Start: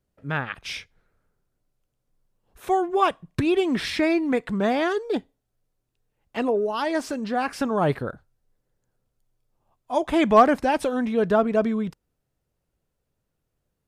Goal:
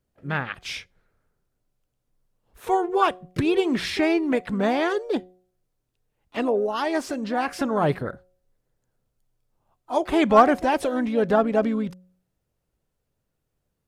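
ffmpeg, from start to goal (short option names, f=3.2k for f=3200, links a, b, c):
-filter_complex "[0:a]asplit=2[a][b];[b]asetrate=55563,aresample=44100,atempo=0.793701,volume=-13dB[c];[a][c]amix=inputs=2:normalize=0,bandreject=f=182.7:t=h:w=4,bandreject=f=365.4:t=h:w=4,bandreject=f=548.1:t=h:w=4,bandreject=f=730.8:t=h:w=4"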